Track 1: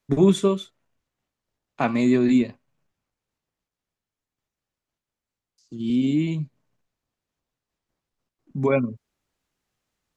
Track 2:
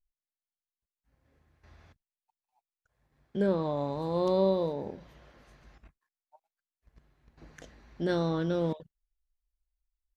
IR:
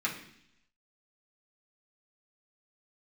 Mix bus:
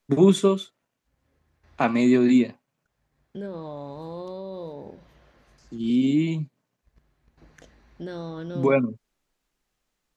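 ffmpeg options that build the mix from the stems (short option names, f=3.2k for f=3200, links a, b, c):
-filter_complex "[0:a]highpass=140,volume=1dB[a];[1:a]alimiter=limit=-22.5dB:level=0:latency=1:release=38,acompressor=threshold=-36dB:ratio=1.5,volume=-1dB[b];[a][b]amix=inputs=2:normalize=0"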